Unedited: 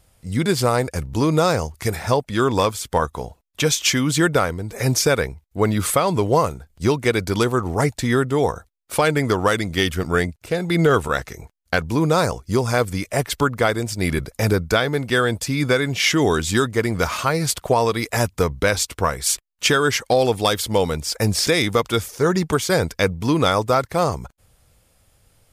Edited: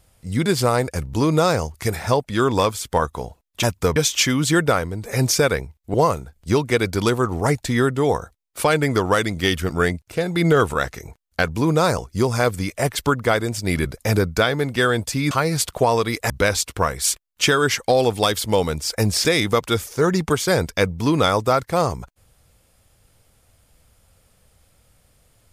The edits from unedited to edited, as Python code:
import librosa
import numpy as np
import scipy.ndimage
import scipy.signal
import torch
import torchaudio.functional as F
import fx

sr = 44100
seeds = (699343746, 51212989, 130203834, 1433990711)

y = fx.edit(x, sr, fx.cut(start_s=5.61, length_s=0.67),
    fx.cut(start_s=15.65, length_s=1.55),
    fx.move(start_s=18.19, length_s=0.33, to_s=3.63), tone=tone)